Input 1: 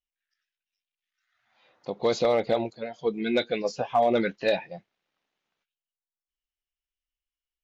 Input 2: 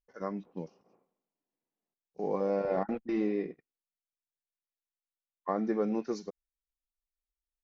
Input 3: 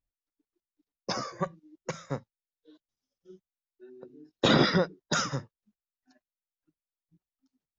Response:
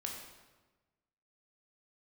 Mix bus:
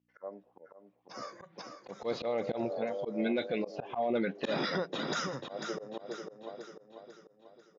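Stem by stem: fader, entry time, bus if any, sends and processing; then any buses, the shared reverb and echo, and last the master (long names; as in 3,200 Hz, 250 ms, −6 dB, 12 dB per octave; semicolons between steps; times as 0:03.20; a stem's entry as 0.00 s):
−8.5 dB, 0.00 s, no send, no echo send, low-shelf EQ 170 Hz +12 dB; automatic gain control gain up to 8.5 dB; low-pass filter 3,600 Hz
+3.0 dB, 0.00 s, no send, echo send −7 dB, envelope filter 590–2,700 Hz, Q 3.2, down, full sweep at −36.5 dBFS; mains hum 60 Hz, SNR 31 dB; automatic ducking −9 dB, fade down 0.85 s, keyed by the first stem
−5.0 dB, 0.00 s, no send, echo send −8.5 dB, no processing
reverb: not used
echo: repeating echo 493 ms, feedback 47%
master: band-pass filter 200–6,200 Hz; volume swells 158 ms; brickwall limiter −23 dBFS, peak gain reduction 10.5 dB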